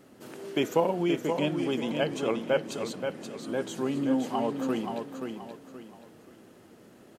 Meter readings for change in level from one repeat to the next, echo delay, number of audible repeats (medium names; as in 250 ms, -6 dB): -9.5 dB, 527 ms, 3